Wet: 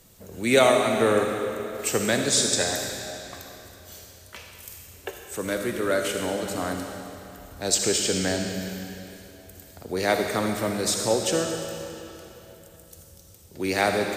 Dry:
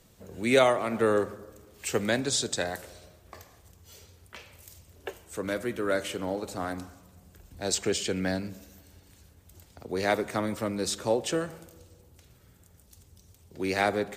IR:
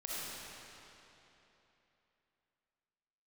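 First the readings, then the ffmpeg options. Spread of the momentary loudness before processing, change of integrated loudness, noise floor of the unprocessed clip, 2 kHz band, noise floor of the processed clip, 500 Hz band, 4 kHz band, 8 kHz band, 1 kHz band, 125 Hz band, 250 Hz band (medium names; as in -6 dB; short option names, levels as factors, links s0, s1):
21 LU, +4.5 dB, -59 dBFS, +4.5 dB, -50 dBFS, +4.0 dB, +6.5 dB, +8.5 dB, +4.0 dB, +4.0 dB, +4.0 dB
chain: -filter_complex "[0:a]highshelf=f=9400:g=5,asplit=2[s0][s1];[1:a]atrim=start_sample=2205,highshelf=f=3600:g=9[s2];[s1][s2]afir=irnorm=-1:irlink=0,volume=0.631[s3];[s0][s3]amix=inputs=2:normalize=0"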